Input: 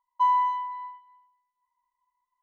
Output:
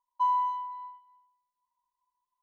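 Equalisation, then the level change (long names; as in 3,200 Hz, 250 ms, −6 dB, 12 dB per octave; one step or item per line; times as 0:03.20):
flat-topped bell 1,900 Hz −12 dB 1.1 octaves
−4.0 dB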